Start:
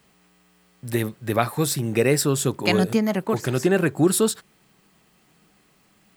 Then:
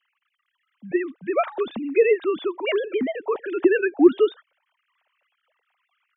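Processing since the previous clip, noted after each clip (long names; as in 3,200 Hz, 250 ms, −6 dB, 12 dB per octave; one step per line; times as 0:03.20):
three sine waves on the formant tracks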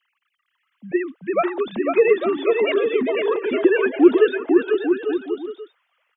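bouncing-ball delay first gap 500 ms, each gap 0.7×, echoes 5
level +1.5 dB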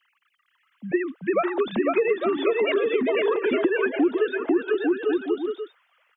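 parametric band 1,500 Hz +2.5 dB 0.77 octaves
downward compressor 6 to 1, threshold −22 dBFS, peak gain reduction 15 dB
level +3 dB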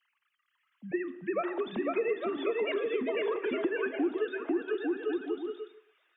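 delay with a high-pass on its return 605 ms, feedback 71%, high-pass 2,700 Hz, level −23 dB
on a send at −12 dB: convolution reverb, pre-delay 3 ms
on the sum: level −9 dB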